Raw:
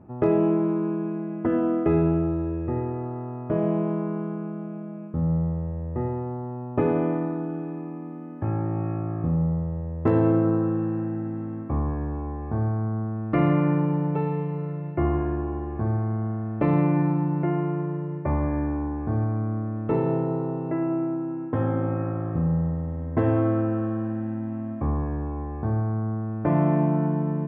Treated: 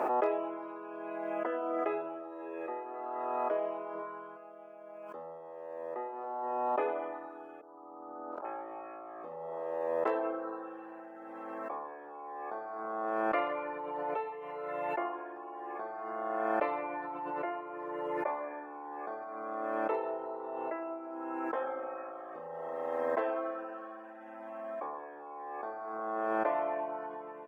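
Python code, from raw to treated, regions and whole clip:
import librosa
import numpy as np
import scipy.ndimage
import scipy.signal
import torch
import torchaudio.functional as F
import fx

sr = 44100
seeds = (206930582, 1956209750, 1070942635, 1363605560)

y = fx.chain(x, sr, fx.low_shelf(hz=300.0, db=6.0),
    fx.room_flutter(wall_m=6.1, rt60_s=0.33), at=(3.95, 4.37))
y = fx.chain(y, sr, fx.steep_lowpass(hz=1500.0, slope=96),
    fx.level_steps(step_db=13), at=(7.61, 8.45))
y = scipy.signal.sosfilt(scipy.signal.butter(4, 510.0, 'highpass', fs=sr, output='sos'), y)
y = fx.dereverb_blind(y, sr, rt60_s=0.81)
y = fx.pre_swell(y, sr, db_per_s=20.0)
y = y * librosa.db_to_amplitude(-2.0)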